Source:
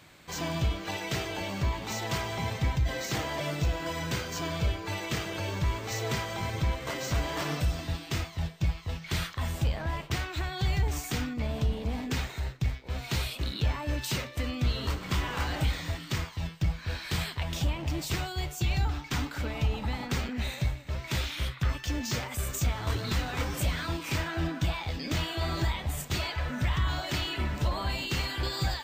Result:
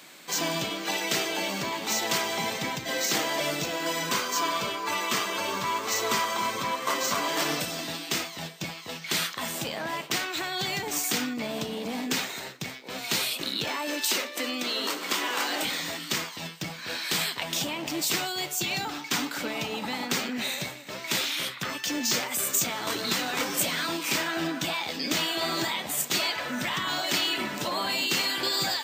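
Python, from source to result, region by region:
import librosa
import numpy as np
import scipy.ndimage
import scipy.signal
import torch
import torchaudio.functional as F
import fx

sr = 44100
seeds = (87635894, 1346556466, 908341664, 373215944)

y = fx.chain(x, sr, fx.peak_eq(hz=1100.0, db=12.0, octaves=0.41),
    fx.notch_comb(f0_hz=160.0), at=(4.09, 7.28))
y = fx.chain(y, sr, fx.highpass(hz=250.0, slope=24),
    fx.band_squash(depth_pct=40), at=(13.67, 15.65))
y = scipy.signal.sosfilt(scipy.signal.butter(4, 200.0, 'highpass', fs=sr, output='sos'), y)
y = fx.high_shelf(y, sr, hz=3700.0, db=8.5)
y = F.gain(torch.from_numpy(y), 4.0).numpy()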